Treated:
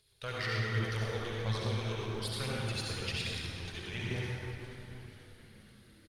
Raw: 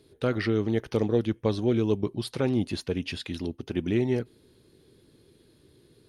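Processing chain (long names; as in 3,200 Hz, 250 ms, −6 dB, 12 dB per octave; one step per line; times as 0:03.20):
convolution reverb RT60 3.6 s, pre-delay 53 ms, DRR −6 dB
phase shifter 1.2 Hz, delay 3 ms, feedback 27%
in parallel at −7.5 dB: slack as between gear wheels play −21.5 dBFS
on the sum: guitar amp tone stack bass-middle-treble 10-0-10
mains-hum notches 50/100 Hz
echo with shifted repeats 482 ms, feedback 59%, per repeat −110 Hz, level −15 dB
level −3 dB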